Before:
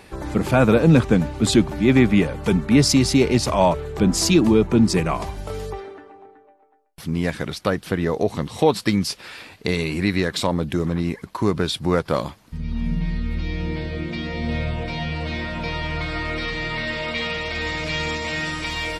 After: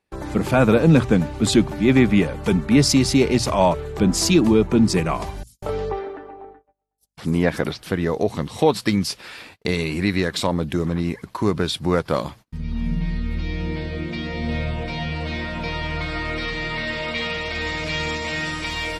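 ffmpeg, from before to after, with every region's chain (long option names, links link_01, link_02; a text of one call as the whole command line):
ffmpeg -i in.wav -filter_complex "[0:a]asettb=1/sr,asplit=3[link_01][link_02][link_03];[link_01]atrim=end=5.434[link_04];[link_02]atrim=start=5.43:end=7.83,asetpts=PTS-STARTPTS,afade=type=in:duration=0.004:curve=qsin,afade=type=out:start_time=2.396:duration=0.004:curve=qsin,equalizer=frequency=590:width=0.39:gain=6.5,acrossover=split=5800[link_05][link_06];[link_05]adelay=190[link_07];[link_07][link_06]amix=inputs=2:normalize=0,atrim=end_sample=105840,aeval=exprs='val(0)+0.00158*(sin(2*PI*50*n/s)+sin(2*PI*2*50*n/s)/2+sin(2*PI*3*50*n/s)/3+sin(2*PI*4*50*n/s)/4+sin(2*PI*5*50*n/s)/5)':channel_layout=same[link_08];[link_03]atrim=start=7.826[link_09];[link_04][link_08]acrossfade=duration=0.004:curve1=hsin:curve2=qsin[link_10];[link_10][link_09]acrossfade=duration=0.004:curve1=qsin:curve2=hsin,bandreject=frequency=60:width_type=h:width=6,bandreject=frequency=120:width_type=h:width=6,agate=range=-31dB:threshold=-42dB:ratio=16:detection=peak" out.wav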